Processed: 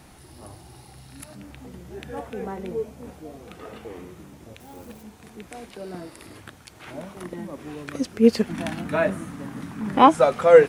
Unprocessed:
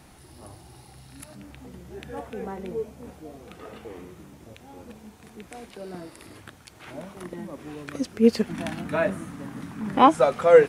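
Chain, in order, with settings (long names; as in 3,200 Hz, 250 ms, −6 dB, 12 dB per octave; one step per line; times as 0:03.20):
0:04.60–0:05.03: spike at every zero crossing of −46.5 dBFS
level +2 dB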